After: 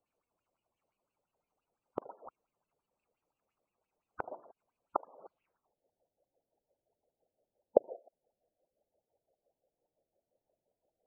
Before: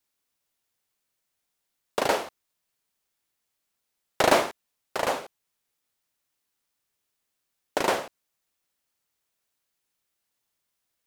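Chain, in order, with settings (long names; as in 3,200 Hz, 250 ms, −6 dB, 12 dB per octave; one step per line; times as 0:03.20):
running median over 25 samples
low-pass filter sweep 8,200 Hz → 600 Hz, 0:05.18–0:05.76
gate on every frequency bin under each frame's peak −15 dB strong
gate with flip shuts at −23 dBFS, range −33 dB
auto-filter bell 5.8 Hz 480–3,100 Hz +16 dB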